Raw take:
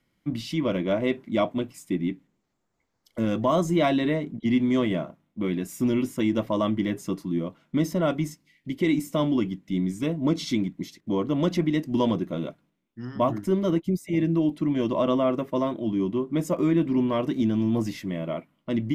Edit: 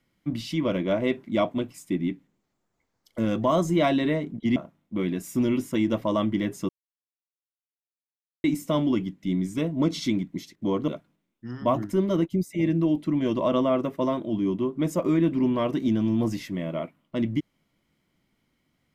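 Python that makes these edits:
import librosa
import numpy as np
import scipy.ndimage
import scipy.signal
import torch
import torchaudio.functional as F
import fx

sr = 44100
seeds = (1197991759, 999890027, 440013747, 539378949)

y = fx.edit(x, sr, fx.cut(start_s=4.56, length_s=0.45),
    fx.silence(start_s=7.14, length_s=1.75),
    fx.cut(start_s=11.33, length_s=1.09), tone=tone)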